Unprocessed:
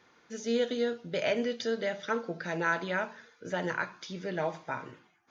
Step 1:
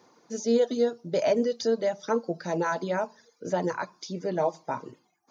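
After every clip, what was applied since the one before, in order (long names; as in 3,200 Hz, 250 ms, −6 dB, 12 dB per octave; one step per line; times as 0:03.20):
reverb reduction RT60 0.67 s
high-pass filter 140 Hz
flat-topped bell 2,200 Hz −11.5 dB
level +7 dB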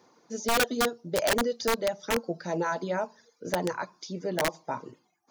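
wrap-around overflow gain 17 dB
level −1.5 dB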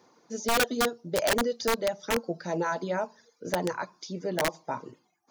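no processing that can be heard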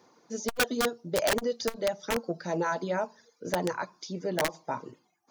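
saturating transformer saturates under 160 Hz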